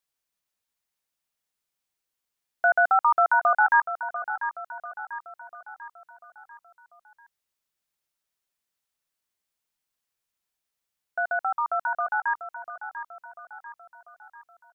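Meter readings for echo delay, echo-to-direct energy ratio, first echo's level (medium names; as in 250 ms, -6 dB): 693 ms, -10.0 dB, -11.0 dB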